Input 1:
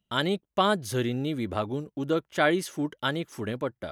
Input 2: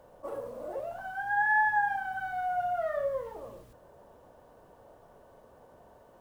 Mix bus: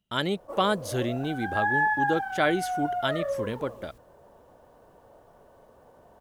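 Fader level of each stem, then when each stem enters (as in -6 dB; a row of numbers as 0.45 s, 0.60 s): -1.0 dB, +1.0 dB; 0.00 s, 0.25 s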